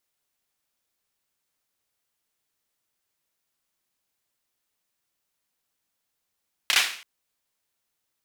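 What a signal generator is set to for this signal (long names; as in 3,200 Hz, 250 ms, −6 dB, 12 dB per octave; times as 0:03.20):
synth clap length 0.33 s, bursts 3, apart 30 ms, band 2,500 Hz, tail 0.49 s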